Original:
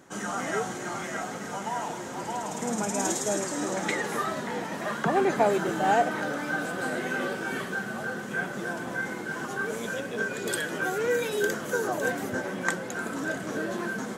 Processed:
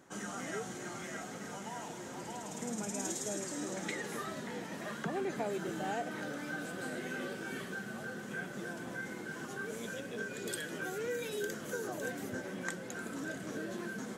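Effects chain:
dynamic equaliser 940 Hz, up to −7 dB, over −41 dBFS, Q 0.85
downward compressor 2 to 1, threshold −28 dBFS, peak gain reduction 4 dB
level −6.5 dB

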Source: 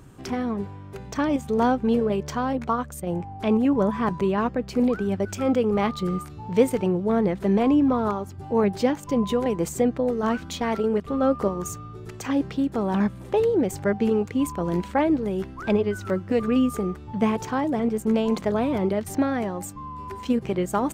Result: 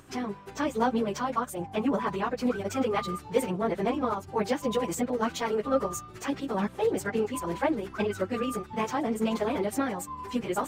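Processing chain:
low-shelf EQ 440 Hz −10 dB
time stretch by phase vocoder 0.51×
level +3.5 dB

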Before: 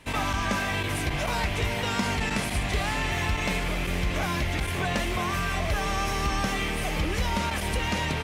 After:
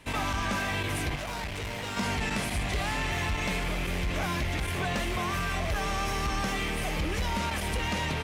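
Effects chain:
0:01.15–0:01.97: tube saturation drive 30 dB, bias 0.65
sine wavefolder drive 3 dB, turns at −16 dBFS
level −8 dB

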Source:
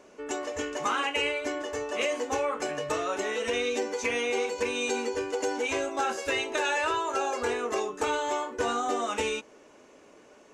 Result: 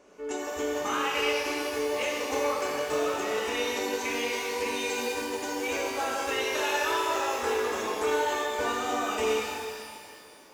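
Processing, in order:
reverb with rising layers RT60 2 s, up +12 semitones, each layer −8 dB, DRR −3 dB
level −5 dB

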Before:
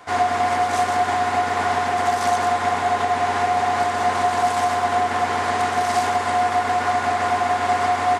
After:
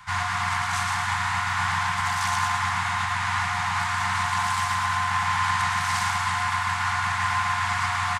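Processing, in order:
Chebyshev band-stop filter 190–890 Hz, order 4
low-shelf EQ 140 Hz +8.5 dB
repeating echo 112 ms, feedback 55%, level −6 dB

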